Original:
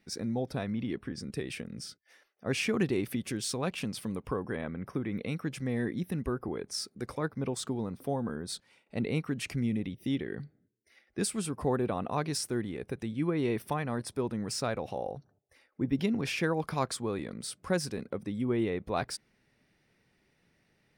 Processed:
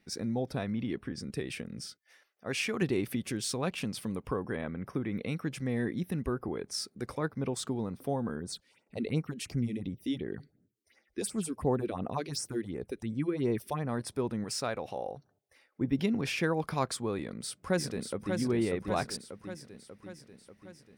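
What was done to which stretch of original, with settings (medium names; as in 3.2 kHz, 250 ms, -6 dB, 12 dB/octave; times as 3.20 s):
1.87–2.82 s: bass shelf 460 Hz -7.5 dB
8.40–13.89 s: phase shifter stages 4, 2.8 Hz, lowest notch 120–3800 Hz
14.44–15.81 s: bass shelf 290 Hz -6.5 dB
17.19–18.36 s: echo throw 590 ms, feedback 60%, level -5 dB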